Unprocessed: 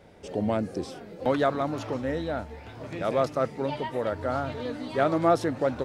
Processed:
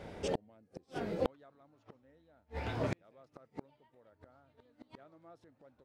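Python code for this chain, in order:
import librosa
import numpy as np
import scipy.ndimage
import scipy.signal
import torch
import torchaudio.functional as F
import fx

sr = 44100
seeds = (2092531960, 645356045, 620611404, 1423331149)

y = fx.high_shelf(x, sr, hz=7100.0, db=-6.0)
y = fx.gate_flip(y, sr, shuts_db=-26.0, range_db=-41)
y = y * librosa.db_to_amplitude(5.5)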